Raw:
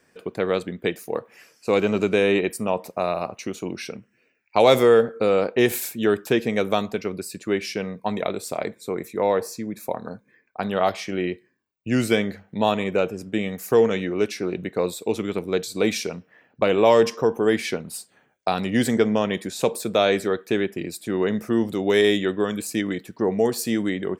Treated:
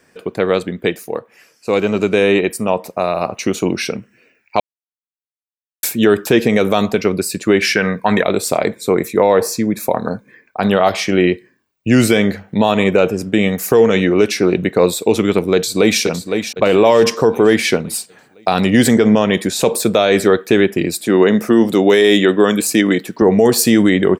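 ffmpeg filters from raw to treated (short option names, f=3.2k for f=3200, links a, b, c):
-filter_complex "[0:a]asettb=1/sr,asplit=3[a][b][c];[a]atrim=end=7.624[d];[b]atrim=start=7.62:end=8.23,asetpts=PTS-STARTPTS,afade=t=in:d=0.004:c=qsin,afade=t=out:st=0.606:d=0.004:c=qsin,equalizer=f=1.6k:t=o:w=0.77:g=13.5[e];[c]atrim=start=8.226[f];[d][e]acrossfade=d=0.004:c1=hsin:c2=qsin[g];[g][f]acrossfade=d=0.004:c1=qsin:c2=hsin,asplit=2[h][i];[i]afade=t=in:st=15.54:d=0.01,afade=t=out:st=16.01:d=0.01,aecho=0:1:510|1020|1530|2040|2550:0.334965|0.150734|0.0678305|0.0305237|0.0137357[j];[h][j]amix=inputs=2:normalize=0,asettb=1/sr,asplit=3[k][l][m];[k]atrim=end=21.014[n];[l]atrim=start=21.01:end=23.22,asetpts=PTS-STARTPTS,afade=t=in:d=0.004:c=qsin,afade=t=out:st=2.206:d=0.004:c=qsin,highpass=170[o];[m]atrim=start=23.216[p];[n][o]acrossfade=d=0.004:c1=hsin:c2=qsin[q];[q][p]acrossfade=d=0.004:c1=qsin:c2=hsin,asplit=5[r][s][t][u][v];[r]atrim=end=1.27,asetpts=PTS-STARTPTS,afade=t=out:st=0.82:d=0.45:silence=0.354813[w];[s]atrim=start=1.27:end=3.12,asetpts=PTS-STARTPTS,volume=-9dB[x];[t]atrim=start=3.12:end=4.6,asetpts=PTS-STARTPTS,afade=t=in:d=0.45:silence=0.354813,afade=t=out:st=1.476:d=0.004:c=hsin[y];[u]atrim=start=4.6:end=5.83,asetpts=PTS-STARTPTS,volume=0[z];[v]atrim=start=5.83,asetpts=PTS-STARTPTS,afade=t=in:d=0.004:c=hsin[aa];[w][x][y][z][aa]concat=n=5:v=0:a=1,dynaudnorm=f=150:g=21:m=11.5dB,alimiter=level_in=8.5dB:limit=-1dB:release=50:level=0:latency=1,volume=-1dB"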